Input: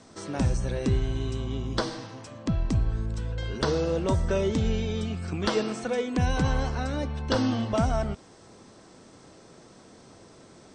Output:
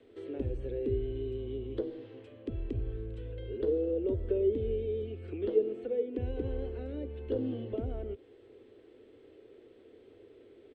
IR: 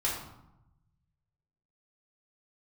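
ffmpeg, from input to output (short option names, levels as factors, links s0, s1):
-filter_complex "[0:a]firequalizer=gain_entry='entry(110,0);entry(160,-21);entry(240,-5);entry(420,5);entry(640,-14);entry(1000,-21);entry(1900,-10);entry(3100,-5);entry(5600,-29);entry(8000,-21)':delay=0.05:min_phase=1,acrossover=split=230|690[s0][s1][s2];[s2]acompressor=threshold=0.00158:ratio=6[s3];[s0][s1][s3]amix=inputs=3:normalize=0,bass=f=250:g=-10,treble=f=4000:g=-8"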